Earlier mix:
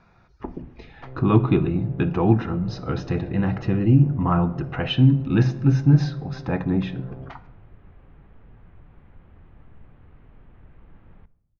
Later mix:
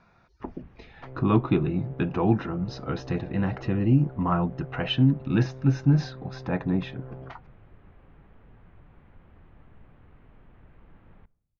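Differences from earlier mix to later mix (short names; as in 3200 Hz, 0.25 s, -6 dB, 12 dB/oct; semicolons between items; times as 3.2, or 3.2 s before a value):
speech: send off; first sound: send -6.0 dB; master: add low shelf 210 Hz -4 dB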